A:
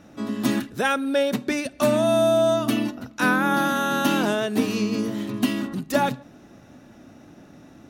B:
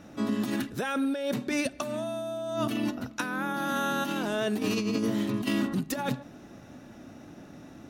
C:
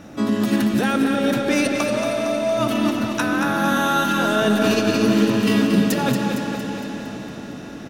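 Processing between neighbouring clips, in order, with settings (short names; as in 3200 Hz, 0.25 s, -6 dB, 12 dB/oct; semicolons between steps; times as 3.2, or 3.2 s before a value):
negative-ratio compressor -26 dBFS, ratio -1; gain -3.5 dB
feedback echo 0.23 s, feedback 57%, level -6.5 dB; reverb RT60 5.7 s, pre-delay 55 ms, DRR 3.5 dB; gain +8 dB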